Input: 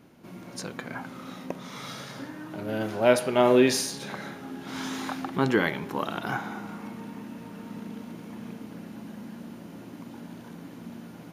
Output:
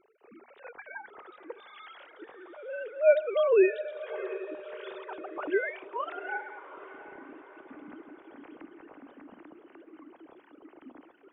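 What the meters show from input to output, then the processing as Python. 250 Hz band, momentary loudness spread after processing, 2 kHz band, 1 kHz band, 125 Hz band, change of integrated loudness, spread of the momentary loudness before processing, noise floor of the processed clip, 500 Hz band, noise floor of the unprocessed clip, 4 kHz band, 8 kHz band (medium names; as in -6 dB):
-10.5 dB, 25 LU, -4.0 dB, -8.0 dB, under -30 dB, -1.0 dB, 20 LU, -60 dBFS, -1.0 dB, -45 dBFS, -16.0 dB, under -40 dB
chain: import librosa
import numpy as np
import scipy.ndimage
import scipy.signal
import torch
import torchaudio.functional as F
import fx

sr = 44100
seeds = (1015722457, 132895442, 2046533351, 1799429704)

y = fx.sine_speech(x, sr)
y = fx.hum_notches(y, sr, base_hz=60, count=4)
y = fx.echo_diffused(y, sr, ms=727, feedback_pct=50, wet_db=-14.0)
y = F.gain(torch.from_numpy(y), -3.5).numpy()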